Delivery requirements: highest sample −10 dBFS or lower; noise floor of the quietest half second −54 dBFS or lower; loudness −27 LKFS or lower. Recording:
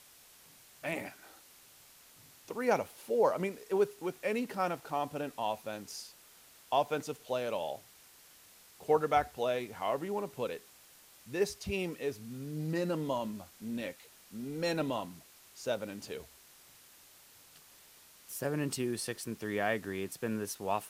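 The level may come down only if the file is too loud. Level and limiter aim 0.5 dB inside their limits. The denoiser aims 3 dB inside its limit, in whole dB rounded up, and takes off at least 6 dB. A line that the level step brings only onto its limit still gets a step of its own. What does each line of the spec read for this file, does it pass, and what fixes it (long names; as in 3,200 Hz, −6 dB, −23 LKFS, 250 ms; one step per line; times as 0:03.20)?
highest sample −14.5 dBFS: in spec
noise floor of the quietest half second −59 dBFS: in spec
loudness −35.0 LKFS: in spec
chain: no processing needed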